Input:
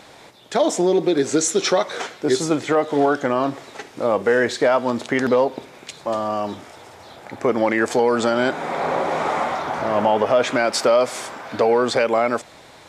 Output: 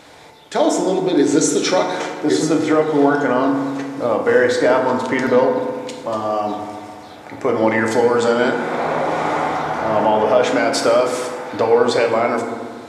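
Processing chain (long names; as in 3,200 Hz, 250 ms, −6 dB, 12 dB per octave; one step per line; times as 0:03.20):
feedback delay network reverb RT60 1.8 s, low-frequency decay 1.25×, high-frequency decay 0.4×, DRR 1.5 dB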